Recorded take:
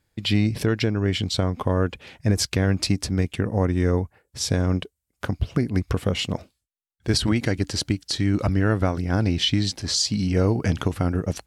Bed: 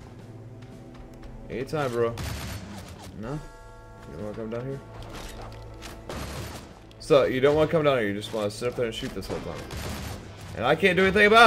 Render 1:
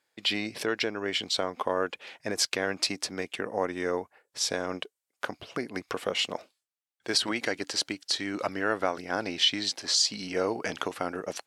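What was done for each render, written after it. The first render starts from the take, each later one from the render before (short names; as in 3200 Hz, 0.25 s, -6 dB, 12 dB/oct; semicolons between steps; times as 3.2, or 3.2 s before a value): HPF 510 Hz 12 dB/oct; high shelf 9900 Hz -7.5 dB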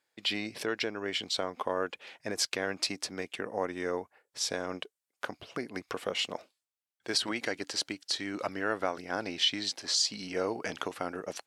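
gain -3.5 dB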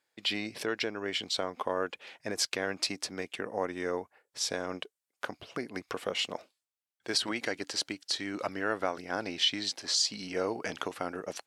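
nothing audible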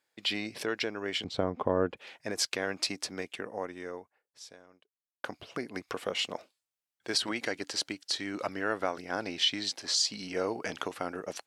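1.24–1.97 tilt -4.5 dB/oct; 3.18–5.24 fade out quadratic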